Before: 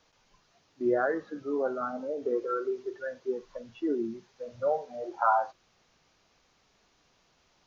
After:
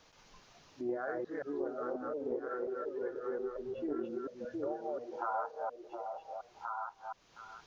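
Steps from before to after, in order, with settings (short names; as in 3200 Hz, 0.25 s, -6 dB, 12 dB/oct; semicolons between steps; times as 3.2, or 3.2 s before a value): reverse delay 0.178 s, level -1.5 dB; 1.93–4.05 tilt -1.5 dB/oct; delay with a stepping band-pass 0.715 s, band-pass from 440 Hz, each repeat 1.4 oct, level -3 dB; compressor 2:1, threshold -52 dBFS, peak gain reduction 18.5 dB; Doppler distortion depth 0.11 ms; gain +4 dB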